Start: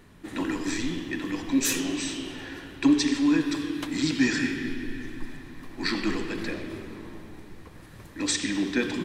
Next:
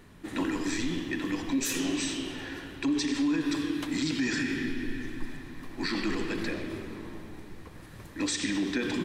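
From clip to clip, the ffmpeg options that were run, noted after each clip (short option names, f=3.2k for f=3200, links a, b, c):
-af "alimiter=limit=-20.5dB:level=0:latency=1:release=62"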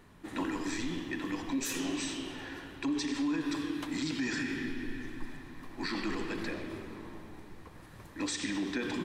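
-af "equalizer=f=930:w=1.2:g=4.5,volume=-5dB"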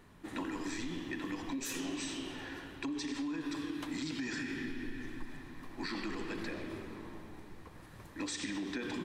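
-af "acompressor=threshold=-33dB:ratio=6,volume=-1.5dB"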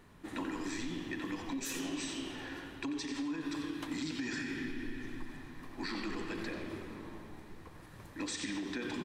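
-af "aecho=1:1:90:0.282"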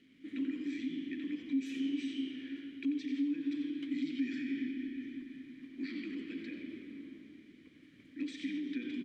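-filter_complex "[0:a]acrusher=bits=9:mix=0:aa=0.000001,asplit=3[a][b][c];[a]bandpass=f=270:t=q:w=8,volume=0dB[d];[b]bandpass=f=2.29k:t=q:w=8,volume=-6dB[e];[c]bandpass=f=3.01k:t=q:w=8,volume=-9dB[f];[d][e][f]amix=inputs=3:normalize=0,volume=7dB"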